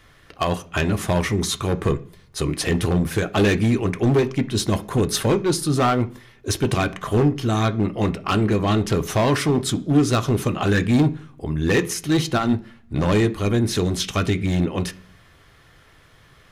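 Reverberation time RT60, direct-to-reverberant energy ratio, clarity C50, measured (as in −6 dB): 0.45 s, 8.5 dB, 19.0 dB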